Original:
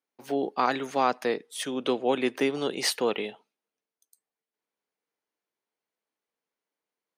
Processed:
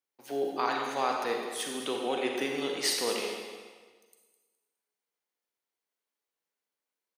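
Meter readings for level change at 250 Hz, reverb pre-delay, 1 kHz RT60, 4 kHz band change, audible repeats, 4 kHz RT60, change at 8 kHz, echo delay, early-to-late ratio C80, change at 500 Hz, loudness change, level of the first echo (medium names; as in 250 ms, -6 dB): -6.5 dB, 32 ms, 1.5 s, -0.5 dB, 1, 1.4 s, +1.0 dB, 208 ms, 3.5 dB, -4.0 dB, -3.0 dB, -13.0 dB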